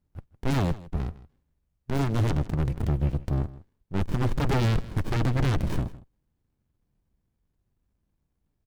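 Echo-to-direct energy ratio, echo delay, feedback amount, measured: -18.5 dB, 0.158 s, no steady repeat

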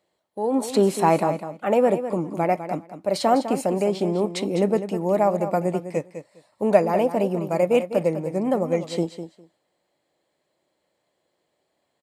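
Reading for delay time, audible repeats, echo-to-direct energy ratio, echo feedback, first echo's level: 0.203 s, 2, -10.5 dB, 16%, -10.5 dB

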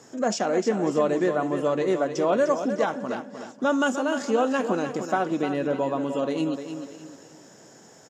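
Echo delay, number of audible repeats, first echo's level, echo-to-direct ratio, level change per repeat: 0.302 s, 5, -9.0 dB, -8.0 dB, no steady repeat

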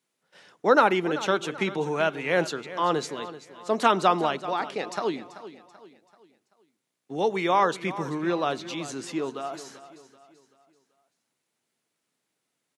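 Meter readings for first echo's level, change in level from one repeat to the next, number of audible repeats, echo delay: -15.0 dB, -7.5 dB, 3, 0.385 s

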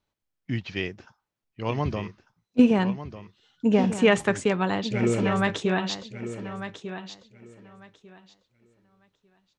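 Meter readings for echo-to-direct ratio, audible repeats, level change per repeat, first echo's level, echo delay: -11.0 dB, 2, -14.5 dB, -11.0 dB, 1.197 s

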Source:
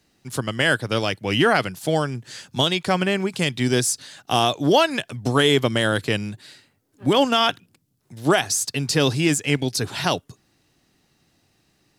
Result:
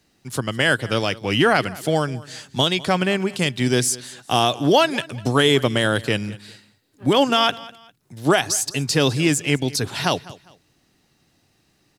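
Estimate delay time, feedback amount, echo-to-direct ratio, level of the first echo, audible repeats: 0.201 s, 30%, -19.5 dB, -20.0 dB, 2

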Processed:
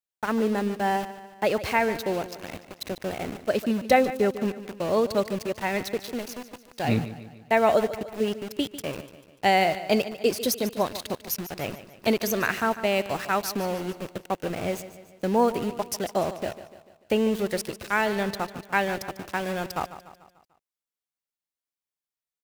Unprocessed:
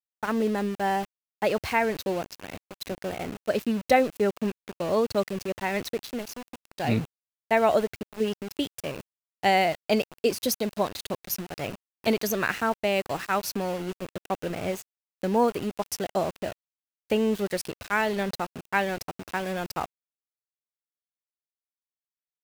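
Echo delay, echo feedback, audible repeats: 0.147 s, 51%, 4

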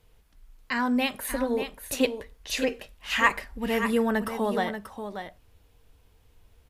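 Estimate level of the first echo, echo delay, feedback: -9.0 dB, 0.585 s, no steady repeat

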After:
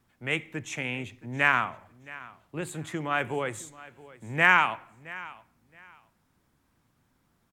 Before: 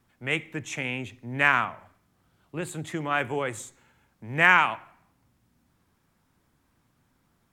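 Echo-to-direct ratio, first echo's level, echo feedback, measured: -19.5 dB, -19.5 dB, 22%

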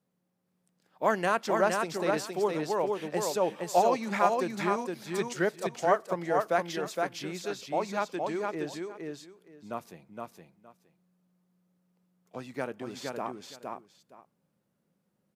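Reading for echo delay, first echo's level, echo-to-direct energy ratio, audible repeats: 0.466 s, -3.5 dB, -3.5 dB, 2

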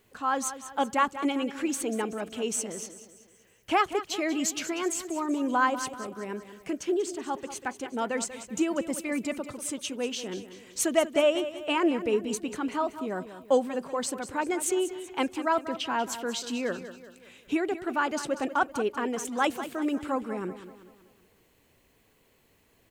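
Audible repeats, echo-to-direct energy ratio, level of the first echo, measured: 4, -11.5 dB, -12.5 dB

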